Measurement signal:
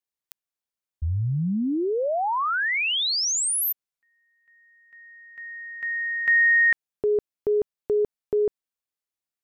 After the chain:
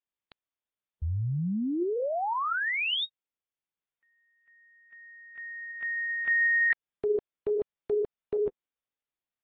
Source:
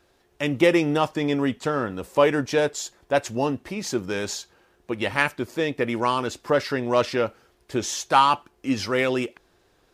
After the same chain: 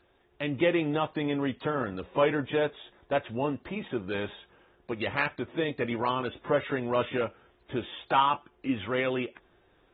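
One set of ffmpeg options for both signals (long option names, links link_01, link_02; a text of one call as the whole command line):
ffmpeg -i in.wav -filter_complex "[0:a]asplit=2[link_01][link_02];[link_02]acompressor=threshold=-28dB:ratio=8:attack=0.51:release=314:knee=6:detection=peak,volume=0.5dB[link_03];[link_01][link_03]amix=inputs=2:normalize=0,volume=-8.5dB" -ar 32000 -c:a aac -b:a 16k out.aac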